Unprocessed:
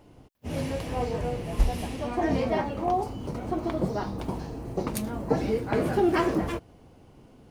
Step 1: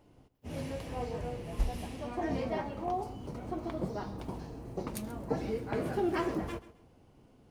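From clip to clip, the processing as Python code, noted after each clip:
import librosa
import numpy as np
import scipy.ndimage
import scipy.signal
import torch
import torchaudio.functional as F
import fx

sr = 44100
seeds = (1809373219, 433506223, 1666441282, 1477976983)

y = fx.echo_feedback(x, sr, ms=134, feedback_pct=26, wet_db=-16.5)
y = F.gain(torch.from_numpy(y), -8.0).numpy()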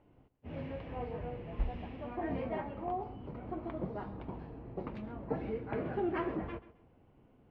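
y = scipy.signal.sosfilt(scipy.signal.butter(4, 2800.0, 'lowpass', fs=sr, output='sos'), x)
y = F.gain(torch.from_numpy(y), -3.0).numpy()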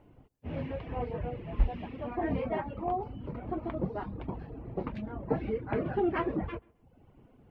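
y = fx.dereverb_blind(x, sr, rt60_s=0.72)
y = fx.low_shelf(y, sr, hz=160.0, db=3.0)
y = F.gain(torch.from_numpy(y), 5.5).numpy()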